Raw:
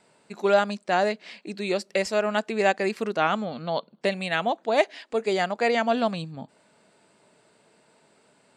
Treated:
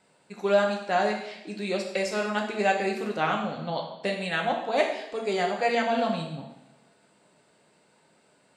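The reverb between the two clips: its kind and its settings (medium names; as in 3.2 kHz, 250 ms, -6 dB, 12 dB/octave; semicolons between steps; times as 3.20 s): two-slope reverb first 0.8 s, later 2.2 s, from -25 dB, DRR 0.5 dB; trim -4.5 dB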